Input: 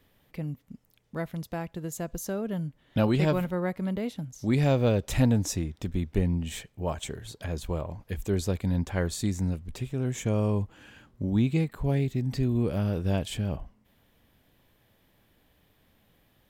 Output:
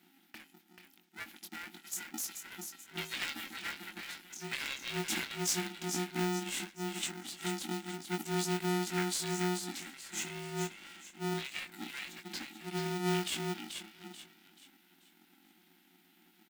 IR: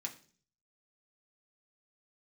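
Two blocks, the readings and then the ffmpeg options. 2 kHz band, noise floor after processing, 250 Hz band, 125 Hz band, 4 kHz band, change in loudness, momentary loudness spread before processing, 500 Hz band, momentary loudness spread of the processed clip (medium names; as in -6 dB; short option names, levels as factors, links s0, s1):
+1.5 dB, -67 dBFS, -10.5 dB, -15.5 dB, +3.0 dB, -8.0 dB, 12 LU, -9.5 dB, 14 LU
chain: -filter_complex "[0:a]asplit=6[s0][s1][s2][s3][s4][s5];[s1]adelay=435,afreqshift=43,volume=0.473[s6];[s2]adelay=870,afreqshift=86,volume=0.184[s7];[s3]adelay=1305,afreqshift=129,volume=0.0716[s8];[s4]adelay=1740,afreqshift=172,volume=0.0282[s9];[s5]adelay=2175,afreqshift=215,volume=0.011[s10];[s0][s6][s7][s8][s9][s10]amix=inputs=6:normalize=0,acrossover=split=110[s11][s12];[s11]acompressor=threshold=0.00794:ratio=6[s13];[s13][s12]amix=inputs=2:normalize=0,afftfilt=real='re*(1-between(b*sr/4096,100,1600))':imag='im*(1-between(b*sr/4096,100,1600))':win_size=4096:overlap=0.75,asplit=2[s14][s15];[s15]adelay=21,volume=0.562[s16];[s14][s16]amix=inputs=2:normalize=0,aeval=exprs='val(0)*sgn(sin(2*PI*270*n/s))':c=same"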